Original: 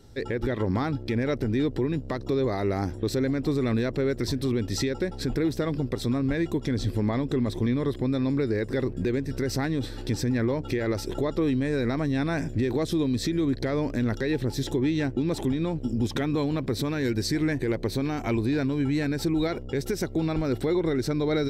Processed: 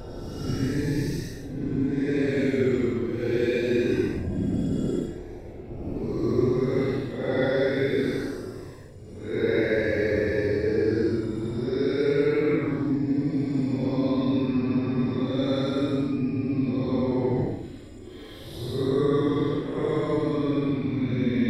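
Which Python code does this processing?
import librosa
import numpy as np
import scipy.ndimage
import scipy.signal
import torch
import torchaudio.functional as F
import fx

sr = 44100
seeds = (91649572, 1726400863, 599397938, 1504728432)

p1 = np.flip(x).copy()
p2 = fx.peak_eq(p1, sr, hz=190.0, db=-5.0, octaves=0.55)
p3 = fx.transient(p2, sr, attack_db=5, sustain_db=-12)
p4 = fx.over_compress(p3, sr, threshold_db=-32.0, ratio=-0.5)
p5 = p3 + (p4 * 10.0 ** (1.0 / 20.0))
p6 = fx.low_shelf(p5, sr, hz=95.0, db=-9.5)
p7 = p6 + fx.echo_thinned(p6, sr, ms=221, feedback_pct=46, hz=420.0, wet_db=-23, dry=0)
y = fx.paulstretch(p7, sr, seeds[0], factor=13.0, window_s=0.05, from_s=12.14)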